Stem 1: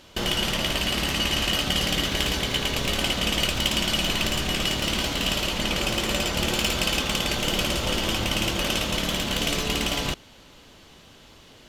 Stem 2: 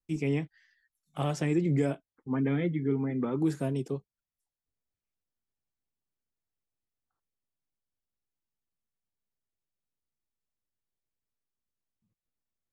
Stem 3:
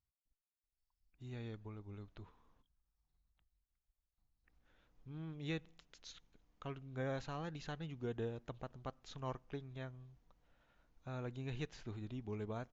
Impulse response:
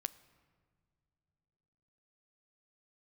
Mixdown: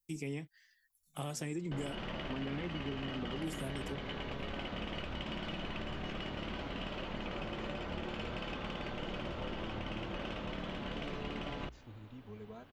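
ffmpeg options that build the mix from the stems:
-filter_complex "[0:a]lowpass=1.9k,bandreject=f=60:t=h:w=6,bandreject=f=120:t=h:w=6,adelay=1550,volume=-7.5dB[a];[1:a]aemphasis=mode=production:type=75kf,volume=-5dB[b];[2:a]asplit=2[c][d];[d]adelay=2.7,afreqshift=-0.54[e];[c][e]amix=inputs=2:normalize=1,volume=-4dB[f];[a][b][f]amix=inputs=3:normalize=0,acompressor=threshold=-39dB:ratio=2.5"

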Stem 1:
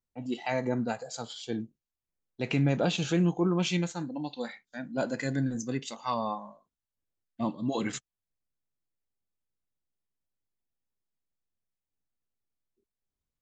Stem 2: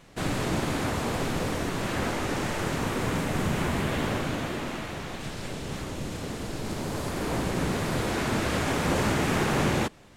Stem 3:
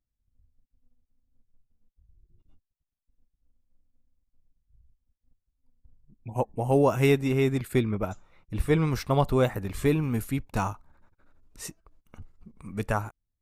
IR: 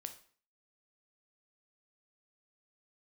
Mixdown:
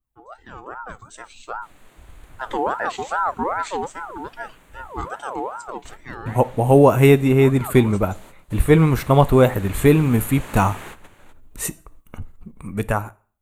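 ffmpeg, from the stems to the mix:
-filter_complex "[0:a]equalizer=f=1.9k:t=o:w=1.5:g=-11,aeval=exprs='val(0)*sin(2*PI*880*n/s+880*0.35/2.5*sin(2*PI*2.5*n/s))':c=same,volume=-5.5dB[a];[1:a]lowshelf=f=470:g=-12,adelay=1450,volume=-15dB,asplit=2[b][c];[c]volume=-21.5dB[d];[2:a]adynamicequalizer=threshold=0.0126:dfrequency=1600:dqfactor=0.7:tfrequency=1600:tqfactor=0.7:attack=5:release=100:ratio=0.375:range=2:mode=cutabove:tftype=highshelf,volume=0.5dB,asplit=3[e][f][g];[e]atrim=end=4.89,asetpts=PTS-STARTPTS,afade=t=out:st=4.886:d=0.004:c=hsin[h];[f]atrim=start=4.89:end=5.68,asetpts=PTS-STARTPTS,volume=0[i];[g]atrim=start=5.68,asetpts=PTS-STARTPTS,afade=t=in:d=0.004:c=hsin[j];[h][i][j]concat=n=3:v=0:a=1,asplit=3[k][l][m];[l]volume=-3dB[n];[m]apad=whole_len=512259[o];[b][o]sidechaingate=range=-21dB:threshold=-51dB:ratio=16:detection=peak[p];[3:a]atrim=start_sample=2205[q];[d][n]amix=inputs=2:normalize=0[r];[r][q]afir=irnorm=-1:irlink=0[s];[a][p][k][s]amix=inputs=4:normalize=0,equalizer=f=5.2k:t=o:w=0.46:g=-12.5,dynaudnorm=f=190:g=11:m=11.5dB,highshelf=f=10k:g=6.5"

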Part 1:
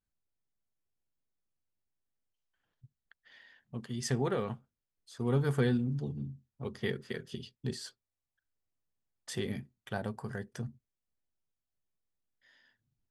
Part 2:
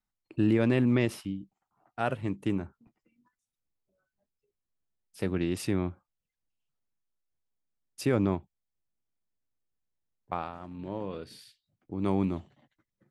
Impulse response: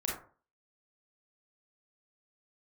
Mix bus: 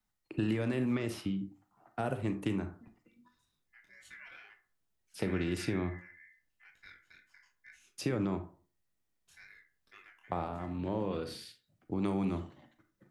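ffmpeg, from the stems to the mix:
-filter_complex "[0:a]aeval=exprs='val(0)*sin(2*PI*1900*n/s)':c=same,flanger=delay=19:depth=7.4:speed=2.2,volume=-17.5dB,asplit=2[a][b];[b]volume=-10dB[c];[1:a]alimiter=limit=-18.5dB:level=0:latency=1,acrossover=split=110|710|6600[d][e][f][g];[d]acompressor=threshold=-50dB:ratio=4[h];[e]acompressor=threshold=-37dB:ratio=4[i];[f]acompressor=threshold=-47dB:ratio=4[j];[g]acompressor=threshold=-60dB:ratio=4[k];[h][i][j][k]amix=inputs=4:normalize=0,volume=2dB,asplit=2[l][m];[m]volume=-8.5dB[n];[2:a]atrim=start_sample=2205[o];[c][n]amix=inputs=2:normalize=0[p];[p][o]afir=irnorm=-1:irlink=0[q];[a][l][q]amix=inputs=3:normalize=0"

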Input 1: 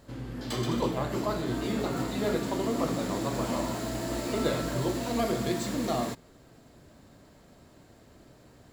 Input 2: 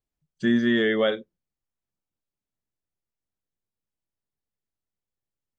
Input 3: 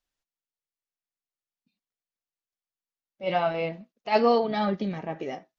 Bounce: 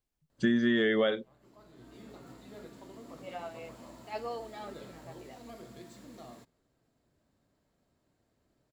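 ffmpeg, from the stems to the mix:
-filter_complex "[0:a]adelay=300,volume=-20dB[a];[1:a]acompressor=threshold=-24dB:ratio=6,volume=1dB,asplit=2[b][c];[2:a]highpass=380,volume=-16dB[d];[c]apad=whole_len=397818[e];[a][e]sidechaincompress=threshold=-41dB:ratio=12:attack=16:release=718[f];[f][b][d]amix=inputs=3:normalize=0"

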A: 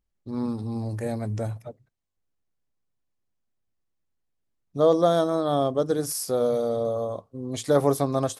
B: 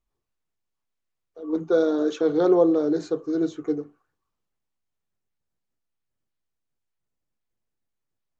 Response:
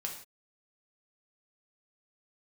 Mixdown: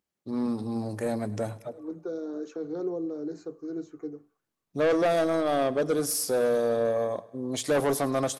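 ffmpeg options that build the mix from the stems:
-filter_complex "[0:a]highpass=180,asoftclip=type=tanh:threshold=-22dB,volume=2.5dB,asplit=2[a][b];[b]volume=-20.5dB[c];[1:a]equalizer=f=3.4k:w=3.5:g=-13.5,acrossover=split=430|3000[d][e][f];[e]acompressor=threshold=-31dB:ratio=6[g];[d][g][f]amix=inputs=3:normalize=0,adelay=350,volume=-11dB,asplit=2[h][i];[i]volume=-20dB[j];[2:a]atrim=start_sample=2205[k];[j][k]afir=irnorm=-1:irlink=0[l];[c]aecho=0:1:104|208|312|416|520|624|728|832:1|0.55|0.303|0.166|0.0915|0.0503|0.0277|0.0152[m];[a][h][l][m]amix=inputs=4:normalize=0"

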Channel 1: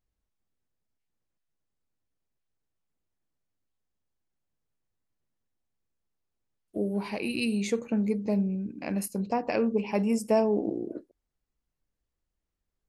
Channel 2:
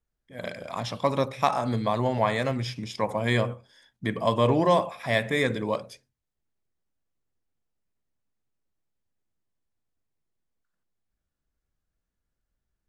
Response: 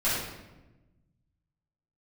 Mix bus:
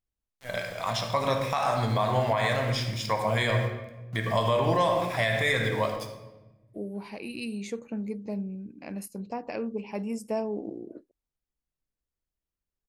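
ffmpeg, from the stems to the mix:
-filter_complex "[0:a]volume=-6.5dB[a];[1:a]equalizer=f=250:t=o:w=2.1:g=-10,aeval=exprs='val(0)*gte(abs(val(0)),0.00447)':c=same,adelay=100,volume=2.5dB,asplit=2[b][c];[c]volume=-13.5dB[d];[2:a]atrim=start_sample=2205[e];[d][e]afir=irnorm=-1:irlink=0[f];[a][b][f]amix=inputs=3:normalize=0,alimiter=limit=-15dB:level=0:latency=1:release=84"

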